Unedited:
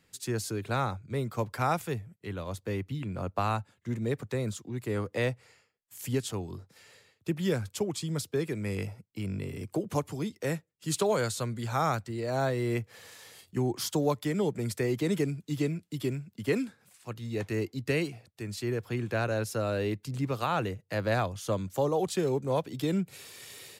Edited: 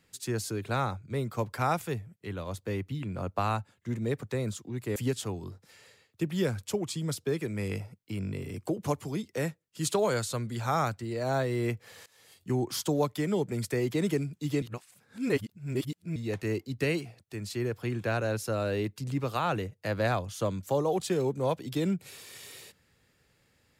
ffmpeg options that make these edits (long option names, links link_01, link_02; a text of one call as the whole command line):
ffmpeg -i in.wav -filter_complex "[0:a]asplit=5[link_01][link_02][link_03][link_04][link_05];[link_01]atrim=end=4.962[link_06];[link_02]atrim=start=6.028:end=13.13,asetpts=PTS-STARTPTS,afade=type=out:start_time=7.098:duration=0.004:curve=hsin:silence=0.0891251[link_07];[link_03]atrim=start=13.13:end=15.692,asetpts=PTS-STARTPTS,afade=type=in:duration=0.46:silence=0.0891251[link_08];[link_04]atrim=start=15.688:end=17.232,asetpts=PTS-STARTPTS,areverse[link_09];[link_05]atrim=start=17.228[link_10];[link_07][link_08]concat=n=2:v=0:a=1[link_11];[link_06][link_11]acrossfade=duration=0.004:curve1=hsin:curve2=hsin[link_12];[link_12][link_09]acrossfade=duration=0.004:curve1=hsin:curve2=hsin[link_13];[link_13][link_10]acrossfade=duration=0.004:curve1=hsin:curve2=hsin" out.wav